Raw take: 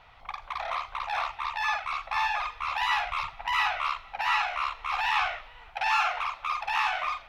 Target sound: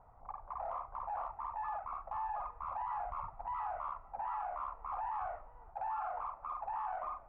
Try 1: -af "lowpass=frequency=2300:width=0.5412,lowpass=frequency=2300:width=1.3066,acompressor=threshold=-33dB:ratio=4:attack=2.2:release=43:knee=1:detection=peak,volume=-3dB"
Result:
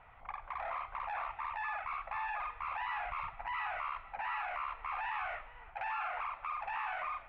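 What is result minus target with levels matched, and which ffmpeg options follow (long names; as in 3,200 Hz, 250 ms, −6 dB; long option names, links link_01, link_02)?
2,000 Hz band +13.5 dB
-af "lowpass=frequency=1000:width=0.5412,lowpass=frequency=1000:width=1.3066,acompressor=threshold=-33dB:ratio=4:attack=2.2:release=43:knee=1:detection=peak,volume=-3dB"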